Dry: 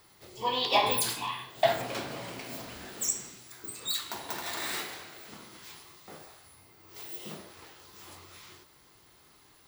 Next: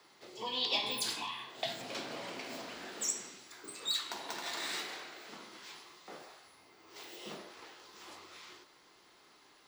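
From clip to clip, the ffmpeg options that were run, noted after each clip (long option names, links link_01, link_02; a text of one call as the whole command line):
ffmpeg -i in.wav -filter_complex "[0:a]asubboost=boost=3.5:cutoff=64,acrossover=split=240|3000[link_01][link_02][link_03];[link_02]acompressor=threshold=-40dB:ratio=6[link_04];[link_01][link_04][link_03]amix=inputs=3:normalize=0,acrossover=split=180 7400:gain=0.0631 1 0.158[link_05][link_06][link_07];[link_05][link_06][link_07]amix=inputs=3:normalize=0" out.wav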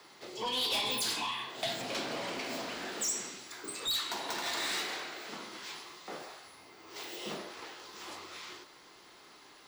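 ffmpeg -i in.wav -af "asoftclip=type=tanh:threshold=-34.5dB,volume=6.5dB" out.wav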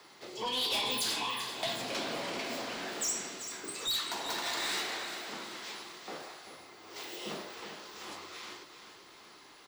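ffmpeg -i in.wav -af "aecho=1:1:388|776|1164|1552|1940:0.316|0.155|0.0759|0.0372|0.0182" out.wav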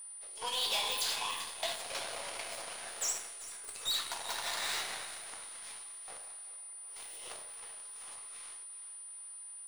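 ffmpeg -i in.wav -af "highpass=frequency=510:width=0.5412,highpass=frequency=510:width=1.3066,aeval=exprs='0.0596*(cos(1*acos(clip(val(0)/0.0596,-1,1)))-cos(1*PI/2))+0.00596*(cos(3*acos(clip(val(0)/0.0596,-1,1)))-cos(3*PI/2))+0.00422*(cos(7*acos(clip(val(0)/0.0596,-1,1)))-cos(7*PI/2))+0.00133*(cos(8*acos(clip(val(0)/0.0596,-1,1)))-cos(8*PI/2))':channel_layout=same,aeval=exprs='val(0)+0.00562*sin(2*PI*9400*n/s)':channel_layout=same" out.wav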